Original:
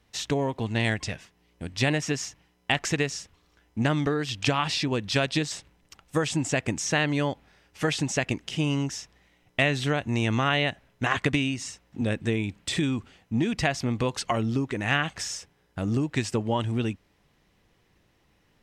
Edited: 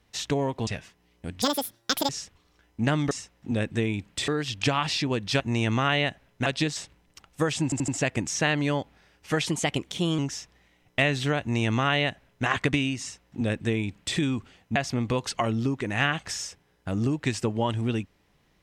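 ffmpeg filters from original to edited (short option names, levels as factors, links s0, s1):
-filter_complex "[0:a]asplit=14[s0][s1][s2][s3][s4][s5][s6][s7][s8][s9][s10][s11][s12][s13];[s0]atrim=end=0.672[s14];[s1]atrim=start=1.038:end=1.794[s15];[s2]atrim=start=1.79:end=3.07,asetpts=PTS-STARTPTS,asetrate=84231,aresample=44100[s16];[s3]atrim=start=3.066:end=4.092[s17];[s4]atrim=start=11.608:end=12.782[s18];[s5]atrim=start=4.088:end=5.212[s19];[s6]atrim=start=10.008:end=11.072[s20];[s7]atrim=start=5.208:end=6.472[s21];[s8]atrim=start=6.388:end=6.472[s22];[s9]atrim=start=6.388:end=6.472[s23];[s10]atrim=start=6.388:end=7.974[s24];[s11]atrim=start=7.97:end=8.79,asetpts=PTS-STARTPTS,asetrate=49833,aresample=44100[s25];[s12]atrim=start=8.786:end=13.362[s26];[s13]atrim=start=13.658[s27];[s14][s15]acrossfade=d=0.004:c1=hsin:c2=hsin[s28];[s28][s16]acrossfade=d=0.004:c1=hsin:c2=hsin[s29];[s29][s17]acrossfade=d=0.004:c1=hsin:c2=hsin[s30];[s30][s18]acrossfade=d=0.004:c1=hsin:c2=hsin[s31];[s31][s19]acrossfade=d=0.004:c1=hsin:c2=hsin[s32];[s32][s20]acrossfade=d=0.004:c1=hsin:c2=hsin[s33];[s33][s21]acrossfade=d=0.004:c1=hsin:c2=hsin[s34];[s34][s22]acrossfade=d=0.004:c1=hsin:c2=hsin[s35];[s35][s23]acrossfade=d=0.004:c1=hsin:c2=hsin[s36];[s36][s24]acrossfade=d=0.004:c1=hsin:c2=hsin[s37];[s37][s25]acrossfade=d=0.004:c1=hsin:c2=hsin[s38];[s38][s26]acrossfade=d=0.004:c1=hsin:c2=hsin[s39];[s39][s27]acrossfade=d=0.004:c1=hsin:c2=hsin"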